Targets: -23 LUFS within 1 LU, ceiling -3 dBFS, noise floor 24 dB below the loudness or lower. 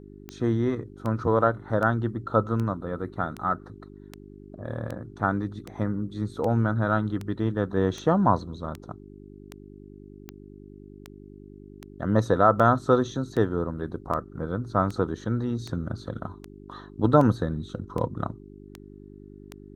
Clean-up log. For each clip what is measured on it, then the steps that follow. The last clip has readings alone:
clicks found 26; hum 50 Hz; highest harmonic 400 Hz; hum level -44 dBFS; loudness -26.5 LUFS; peak level -4.5 dBFS; loudness target -23.0 LUFS
-> de-click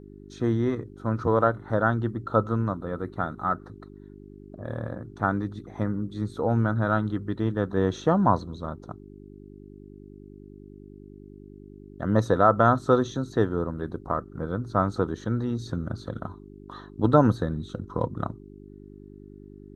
clicks found 0; hum 50 Hz; highest harmonic 400 Hz; hum level -44 dBFS
-> de-hum 50 Hz, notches 8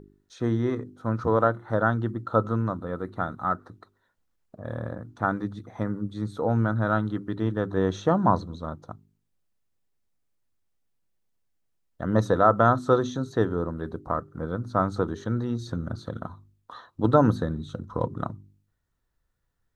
hum not found; loudness -26.5 LUFS; peak level -5.0 dBFS; loudness target -23.0 LUFS
-> trim +3.5 dB; peak limiter -3 dBFS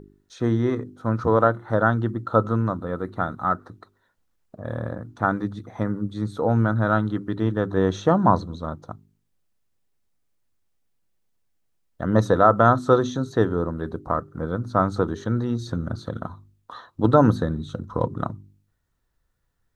loudness -23.0 LUFS; peak level -3.0 dBFS; noise floor -71 dBFS

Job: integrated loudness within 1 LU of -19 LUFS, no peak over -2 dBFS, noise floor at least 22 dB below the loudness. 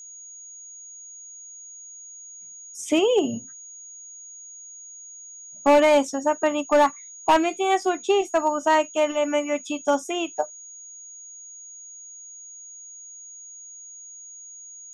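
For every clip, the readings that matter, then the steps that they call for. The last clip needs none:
clipped samples 0.4%; clipping level -11.5 dBFS; steady tone 6.7 kHz; tone level -40 dBFS; loudness -22.5 LUFS; peak level -11.5 dBFS; loudness target -19.0 LUFS
-> clip repair -11.5 dBFS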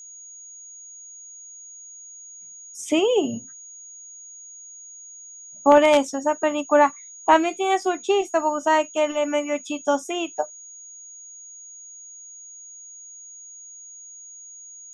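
clipped samples 0.0%; steady tone 6.7 kHz; tone level -40 dBFS
-> band-stop 6.7 kHz, Q 30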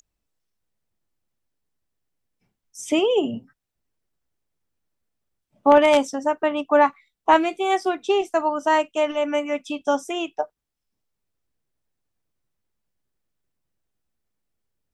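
steady tone not found; loudness -21.5 LUFS; peak level -2.5 dBFS; loudness target -19.0 LUFS
-> trim +2.5 dB; peak limiter -2 dBFS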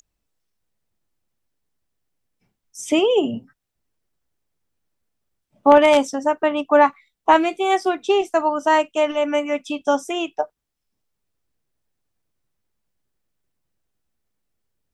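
loudness -19.0 LUFS; peak level -2.0 dBFS; noise floor -79 dBFS

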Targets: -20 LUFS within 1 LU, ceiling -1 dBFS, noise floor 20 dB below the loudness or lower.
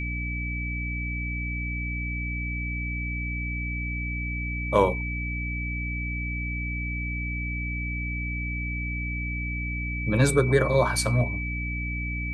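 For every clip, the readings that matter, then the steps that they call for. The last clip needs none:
hum 60 Hz; highest harmonic 300 Hz; hum level -29 dBFS; steady tone 2.3 kHz; tone level -32 dBFS; loudness -28.0 LUFS; peak level -6.0 dBFS; loudness target -20.0 LUFS
-> hum notches 60/120/180/240/300 Hz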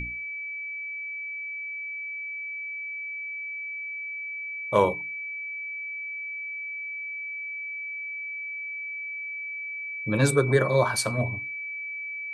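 hum not found; steady tone 2.3 kHz; tone level -32 dBFS
-> band-stop 2.3 kHz, Q 30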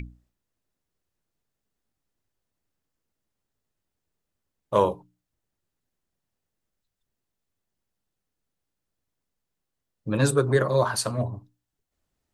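steady tone not found; loudness -24.5 LUFS; peak level -6.5 dBFS; loudness target -20.0 LUFS
-> trim +4.5 dB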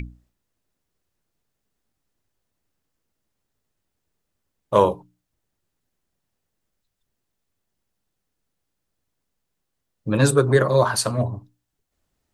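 loudness -20.0 LUFS; peak level -2.0 dBFS; noise floor -79 dBFS

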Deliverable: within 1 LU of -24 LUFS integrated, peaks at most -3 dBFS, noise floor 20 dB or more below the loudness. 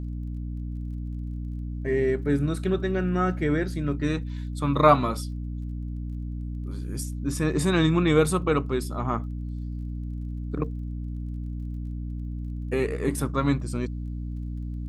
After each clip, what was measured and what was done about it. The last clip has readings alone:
tick rate 24 per s; hum 60 Hz; highest harmonic 300 Hz; hum level -30 dBFS; loudness -27.5 LUFS; peak level -3.5 dBFS; loudness target -24.0 LUFS
-> de-click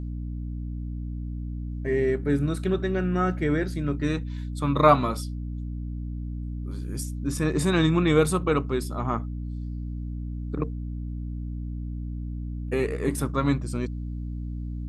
tick rate 0 per s; hum 60 Hz; highest harmonic 300 Hz; hum level -30 dBFS
-> hum notches 60/120/180/240/300 Hz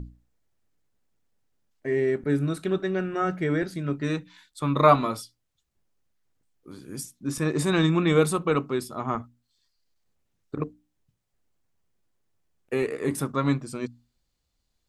hum not found; loudness -26.0 LUFS; peak level -4.0 dBFS; loudness target -24.0 LUFS
-> trim +2 dB; peak limiter -3 dBFS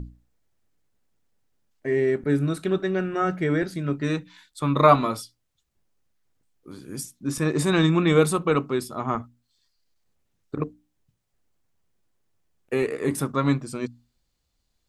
loudness -24.0 LUFS; peak level -3.0 dBFS; noise floor -75 dBFS

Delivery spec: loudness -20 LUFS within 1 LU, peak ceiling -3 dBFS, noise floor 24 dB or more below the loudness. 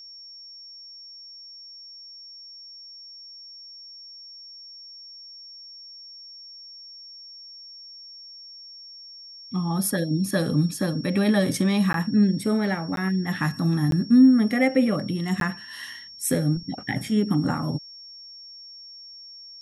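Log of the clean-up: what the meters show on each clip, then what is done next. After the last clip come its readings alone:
dropouts 4; longest dropout 12 ms; steady tone 5.5 kHz; tone level -41 dBFS; loudness -23.0 LUFS; peak level -7.5 dBFS; loudness target -20.0 LUFS
-> interpolate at 11.93/12.96/13.91/15.40 s, 12 ms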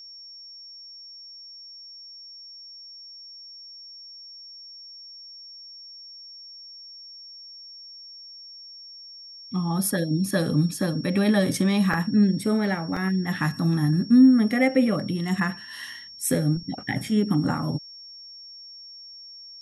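dropouts 0; steady tone 5.5 kHz; tone level -41 dBFS
-> band-stop 5.5 kHz, Q 30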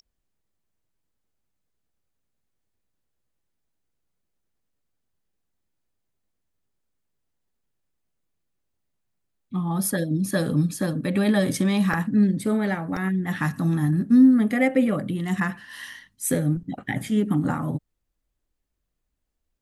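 steady tone not found; loudness -23.0 LUFS; peak level -7.5 dBFS; loudness target -20.0 LUFS
-> trim +3 dB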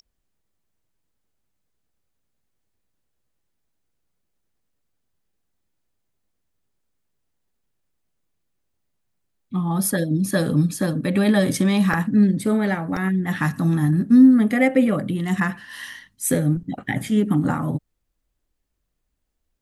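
loudness -20.0 LUFS; peak level -4.5 dBFS; noise floor -75 dBFS

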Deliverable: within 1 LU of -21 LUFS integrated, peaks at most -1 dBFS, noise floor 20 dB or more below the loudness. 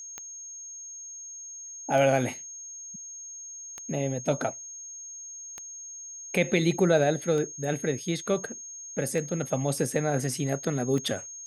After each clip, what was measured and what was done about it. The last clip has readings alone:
clicks found 7; steady tone 6.5 kHz; tone level -39 dBFS; loudness -29.5 LUFS; peak level -10.0 dBFS; loudness target -21.0 LUFS
-> de-click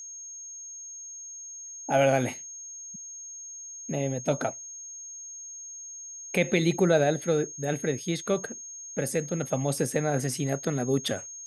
clicks found 0; steady tone 6.5 kHz; tone level -39 dBFS
-> band-stop 6.5 kHz, Q 30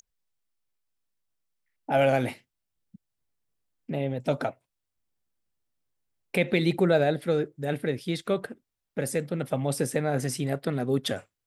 steady tone not found; loudness -28.0 LUFS; peak level -10.0 dBFS; loudness target -21.0 LUFS
-> trim +7 dB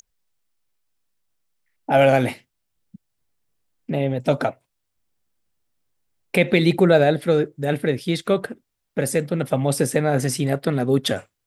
loudness -21.0 LUFS; peak level -3.0 dBFS; noise floor -77 dBFS

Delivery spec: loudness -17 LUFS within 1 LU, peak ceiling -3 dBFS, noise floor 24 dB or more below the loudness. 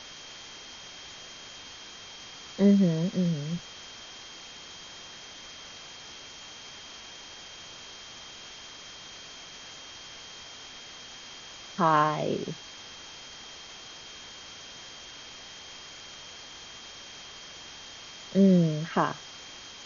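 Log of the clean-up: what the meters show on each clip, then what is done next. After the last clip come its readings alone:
steady tone 3.2 kHz; tone level -48 dBFS; noise floor -46 dBFS; noise floor target -57 dBFS; loudness -33.0 LUFS; peak level -11.0 dBFS; loudness target -17.0 LUFS
-> band-stop 3.2 kHz, Q 30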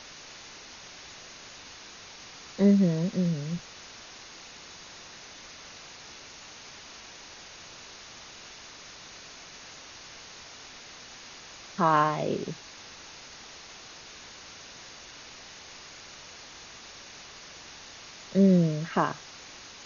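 steady tone not found; noise floor -47 dBFS; noise floor target -50 dBFS
-> noise reduction 6 dB, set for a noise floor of -47 dBFS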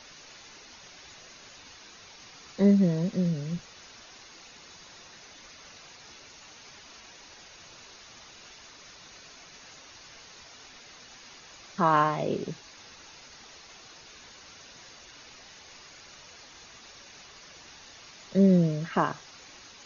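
noise floor -51 dBFS; loudness -26.0 LUFS; peak level -10.5 dBFS; loudness target -17.0 LUFS
-> trim +9 dB; peak limiter -3 dBFS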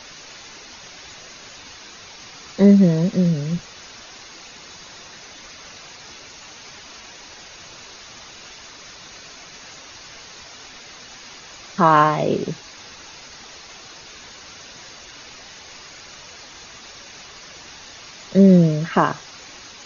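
loudness -17.0 LUFS; peak level -3.0 dBFS; noise floor -42 dBFS

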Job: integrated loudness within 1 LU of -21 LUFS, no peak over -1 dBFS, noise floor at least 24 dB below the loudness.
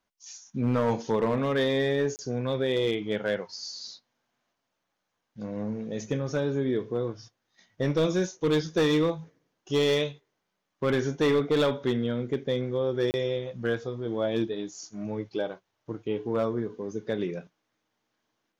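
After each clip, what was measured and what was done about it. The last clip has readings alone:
clipped samples 0.9%; clipping level -18.5 dBFS; dropouts 2; longest dropout 29 ms; loudness -28.5 LUFS; peak level -18.5 dBFS; loudness target -21.0 LUFS
-> clip repair -18.5 dBFS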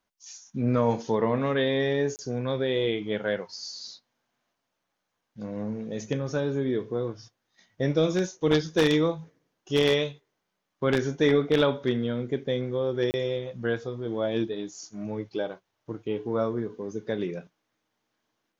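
clipped samples 0.0%; dropouts 2; longest dropout 29 ms
-> interpolate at 2.16/13.11 s, 29 ms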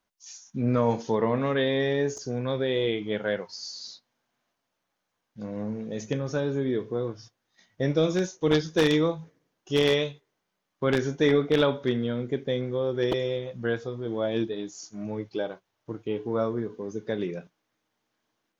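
dropouts 0; loudness -27.5 LUFS; peak level -9.5 dBFS; loudness target -21.0 LUFS
-> trim +6.5 dB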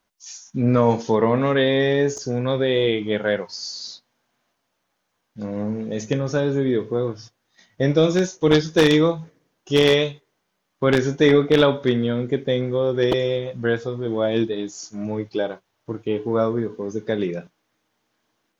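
loudness -21.0 LUFS; peak level -3.0 dBFS; noise floor -74 dBFS

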